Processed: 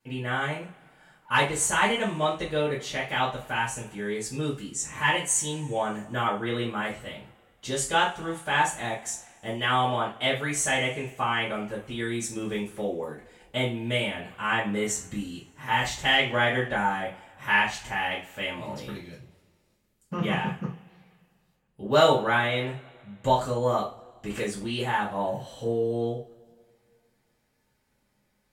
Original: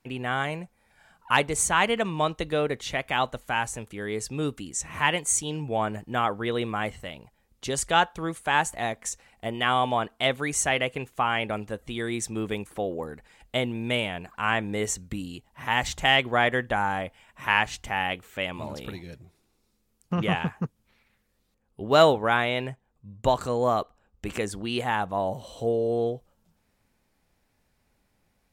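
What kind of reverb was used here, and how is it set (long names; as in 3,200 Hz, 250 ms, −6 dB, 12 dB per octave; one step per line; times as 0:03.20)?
coupled-rooms reverb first 0.31 s, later 2.2 s, from −27 dB, DRR −9 dB
level −10 dB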